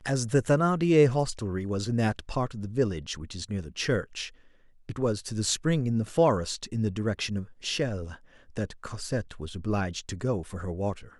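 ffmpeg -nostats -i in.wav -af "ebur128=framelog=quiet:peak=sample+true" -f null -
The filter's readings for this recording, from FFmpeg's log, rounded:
Integrated loudness:
  I:         -28.6 LUFS
  Threshold: -38.9 LUFS
Loudness range:
  LRA:         5.9 LU
  Threshold: -49.6 LUFS
  LRA low:   -32.7 LUFS
  LRA high:  -26.8 LUFS
Sample peak:
  Peak:       -9.0 dBFS
True peak:
  Peak:       -9.0 dBFS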